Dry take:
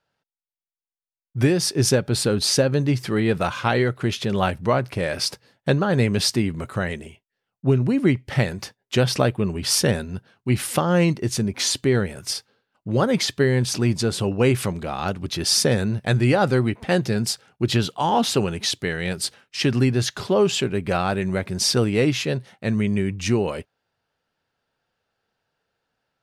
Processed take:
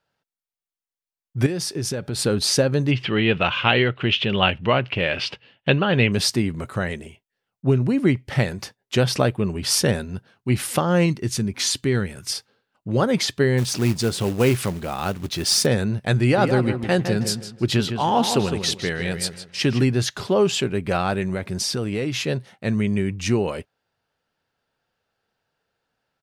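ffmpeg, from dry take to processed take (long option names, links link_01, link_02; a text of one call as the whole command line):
ffmpeg -i in.wav -filter_complex "[0:a]asettb=1/sr,asplit=3[link_01][link_02][link_03];[link_01]atrim=end=1.464[link_04];[link_02]atrim=start=1.46:end=2.19,asetpts=PTS-STARTPTS,afade=type=in:duration=0.004:curve=qsin,afade=type=out:start_time=0.726:duration=0.004:curve=qsin,acompressor=threshold=-23dB:ratio=5:attack=3.2:release=140:knee=1:detection=peak[link_05];[link_03]atrim=start=2.186[link_06];[link_04][link_05]acrossfade=duration=0.004:curve1=hsin:curve2=qsin[link_07];[link_07][link_06]acrossfade=duration=0.004:curve1=qsin:curve2=hsin,asettb=1/sr,asplit=3[link_08][link_09][link_10];[link_08]atrim=end=2.914[link_11];[link_09]atrim=start=2.91:end=6.12,asetpts=PTS-STARTPTS,afade=type=in:duration=0.004:curve=qsin,afade=type=out:start_time=3.206:duration=0.004:curve=qsin,lowpass=frequency=2900:width_type=q:width=6.1[link_12];[link_10]atrim=start=6.116[link_13];[link_11][link_12]acrossfade=duration=0.004:curve1=hsin:curve2=qsin[link_14];[link_14][link_13]acrossfade=duration=0.004:curve1=qsin:curve2=hsin,asettb=1/sr,asplit=3[link_15][link_16][link_17];[link_15]atrim=end=11.064[link_18];[link_16]atrim=start=11.06:end=12.33,asetpts=PTS-STARTPTS,afade=type=in:duration=0.004:curve=qsin,afade=type=out:start_time=1.266:duration=0.004:curve=qsin,equalizer=frequency=620:width=1.1:gain=-6.5[link_19];[link_17]atrim=start=12.326[link_20];[link_18][link_19]acrossfade=duration=0.004:curve1=hsin:curve2=qsin[link_21];[link_21][link_20]acrossfade=duration=0.004:curve1=qsin:curve2=hsin,asplit=3[link_22][link_23][link_24];[link_22]afade=type=out:start_time=13.57:duration=0.02[link_25];[link_23]acrusher=bits=4:mode=log:mix=0:aa=0.000001,afade=type=in:start_time=13.57:duration=0.02,afade=type=out:start_time=15.65:duration=0.02[link_26];[link_24]afade=type=in:start_time=15.65:duration=0.02[link_27];[link_25][link_26][link_27]amix=inputs=3:normalize=0,asplit=3[link_28][link_29][link_30];[link_28]afade=type=out:start_time=16.36:duration=0.02[link_31];[link_29]asplit=2[link_32][link_33];[link_33]adelay=158,lowpass=frequency=3300:poles=1,volume=-7.5dB,asplit=2[link_34][link_35];[link_35]adelay=158,lowpass=frequency=3300:poles=1,volume=0.29,asplit=2[link_36][link_37];[link_37]adelay=158,lowpass=frequency=3300:poles=1,volume=0.29,asplit=2[link_38][link_39];[link_39]adelay=158,lowpass=frequency=3300:poles=1,volume=0.29[link_40];[link_32][link_34][link_36][link_38][link_40]amix=inputs=5:normalize=0,afade=type=in:start_time=16.36:duration=0.02,afade=type=out:start_time=19.81:duration=0.02[link_41];[link_30]afade=type=in:start_time=19.81:duration=0.02[link_42];[link_31][link_41][link_42]amix=inputs=3:normalize=0,asettb=1/sr,asplit=3[link_43][link_44][link_45];[link_43]atrim=end=21.224[link_46];[link_44]atrim=start=21.22:end=22.14,asetpts=PTS-STARTPTS,afade=type=in:duration=0.004:curve=qsin,afade=type=out:start_time=0.916:duration=0.004:curve=qsin,acompressor=threshold=-21dB:ratio=5:attack=3.2:release=140:knee=1:detection=peak[link_47];[link_45]atrim=start=22.136[link_48];[link_46][link_47]acrossfade=duration=0.004:curve1=hsin:curve2=qsin[link_49];[link_49][link_48]acrossfade=duration=0.004:curve1=qsin:curve2=hsin" out.wav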